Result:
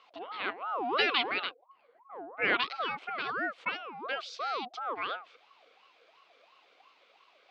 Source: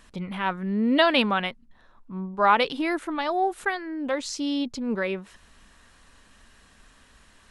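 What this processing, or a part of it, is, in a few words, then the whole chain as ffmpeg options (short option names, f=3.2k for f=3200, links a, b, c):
voice changer toy: -filter_complex "[0:a]aeval=exprs='val(0)*sin(2*PI*790*n/s+790*0.4/2.9*sin(2*PI*2.9*n/s))':c=same,highpass=550,equalizer=f=610:t=q:w=4:g=-5,equalizer=f=900:t=q:w=4:g=-9,equalizer=f=1.8k:t=q:w=4:g=-8,lowpass=f=4.1k:w=0.5412,lowpass=f=4.1k:w=1.3066,asettb=1/sr,asplit=3[a][b][c];[a]atrim=end=1.494[d];[b]atrim=start=1.49:end=2.42,asetpts=PTS-STARTPTS,afade=t=in:d=0.004:c=qsin,afade=t=out:st=0.926:d=0.004:c=qsin,highshelf=f=2.2k:g=-9[e];[c]atrim=start=2.416[f];[d][e]acrossfade=d=0.004:c1=hsin:c2=qsin[g];[g][f]acrossfade=d=0.004:c1=qsin:c2=hsin"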